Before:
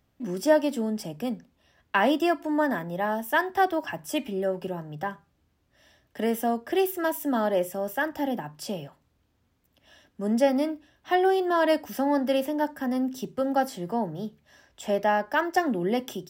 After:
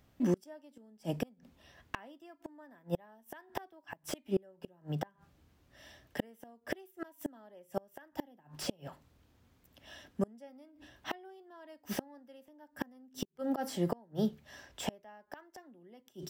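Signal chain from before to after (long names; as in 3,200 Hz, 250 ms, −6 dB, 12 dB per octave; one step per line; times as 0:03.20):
0:13.25–0:13.94: volume swells 292 ms
gate with flip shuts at −23 dBFS, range −34 dB
slew-rate limiting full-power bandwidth 44 Hz
level +3.5 dB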